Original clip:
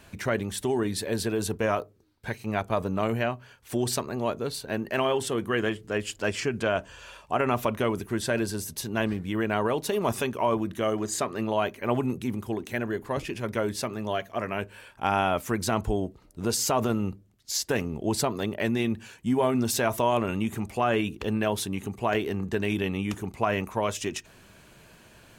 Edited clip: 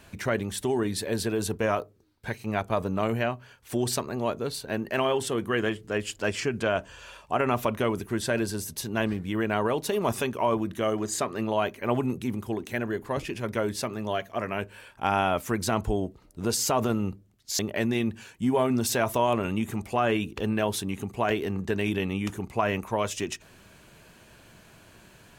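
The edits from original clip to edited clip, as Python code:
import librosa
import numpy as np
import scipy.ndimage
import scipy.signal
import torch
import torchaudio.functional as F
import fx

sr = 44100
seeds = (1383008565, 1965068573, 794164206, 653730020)

y = fx.edit(x, sr, fx.cut(start_s=17.59, length_s=0.84), tone=tone)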